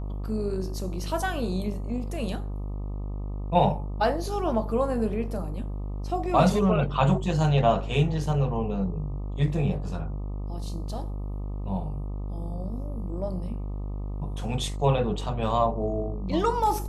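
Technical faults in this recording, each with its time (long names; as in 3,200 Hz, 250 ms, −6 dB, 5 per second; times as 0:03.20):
mains buzz 50 Hz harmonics 25 −32 dBFS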